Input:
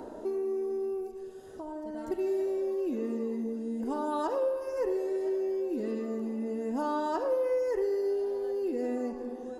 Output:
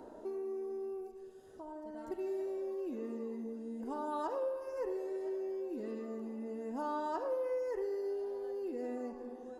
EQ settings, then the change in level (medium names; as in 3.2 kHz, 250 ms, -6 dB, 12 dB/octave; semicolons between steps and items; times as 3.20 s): dynamic bell 1 kHz, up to +4 dB, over -46 dBFS, Q 0.78; -9.0 dB